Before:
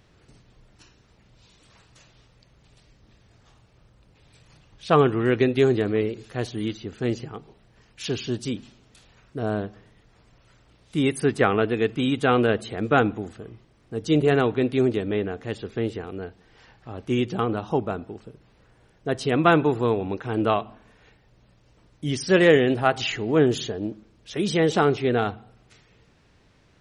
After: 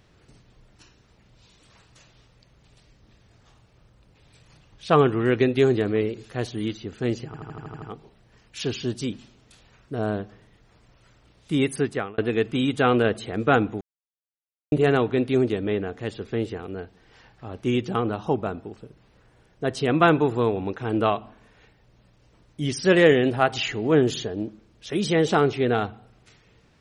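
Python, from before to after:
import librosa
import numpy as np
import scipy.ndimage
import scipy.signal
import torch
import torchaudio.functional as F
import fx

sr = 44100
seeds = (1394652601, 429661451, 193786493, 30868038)

y = fx.edit(x, sr, fx.stutter(start_s=7.26, slice_s=0.08, count=8),
    fx.fade_out_span(start_s=11.15, length_s=0.47),
    fx.silence(start_s=13.25, length_s=0.91), tone=tone)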